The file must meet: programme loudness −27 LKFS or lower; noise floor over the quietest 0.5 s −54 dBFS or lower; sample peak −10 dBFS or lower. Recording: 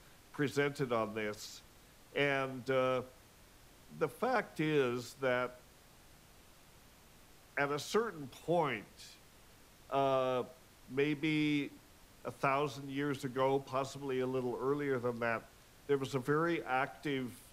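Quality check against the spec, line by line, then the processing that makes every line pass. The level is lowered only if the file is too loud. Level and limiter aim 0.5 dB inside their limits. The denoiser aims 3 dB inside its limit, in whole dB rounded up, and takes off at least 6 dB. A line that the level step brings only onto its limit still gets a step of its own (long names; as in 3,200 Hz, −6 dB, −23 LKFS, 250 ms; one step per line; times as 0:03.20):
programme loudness −35.5 LKFS: in spec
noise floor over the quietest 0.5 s −61 dBFS: in spec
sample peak −20.0 dBFS: in spec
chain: no processing needed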